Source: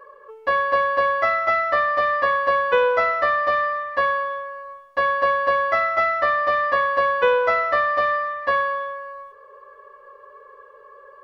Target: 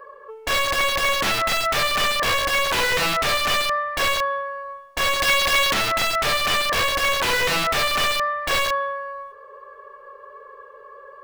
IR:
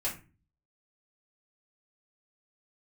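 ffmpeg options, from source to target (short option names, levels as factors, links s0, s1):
-filter_complex "[0:a]aeval=exprs='(mod(7.08*val(0)+1,2)-1)/7.08':c=same,asettb=1/sr,asplit=3[s0][s1][s2];[s0]atrim=end=5.204[s3];[s1]atrim=start=5.2:end=5.74,asetpts=PTS-STARTPTS,afade=t=in:d=0.004:c=qsin,afade=t=out:st=0.536:d=0.004:c=qsin,highshelf=f=3400:g=10[s4];[s2]atrim=start=5.736[s5];[s3][s4]acrossfade=d=0.004:c1=hsin:c2=qsin[s6];[s6][s5]acrossfade=d=0.004:c1=qsin:c2=hsin,acrossover=split=3800[s7][s8];[s8]acompressor=threshold=0.0282:ratio=4:attack=1:release=60[s9];[s7][s9]amix=inputs=2:normalize=0,volume=1.41"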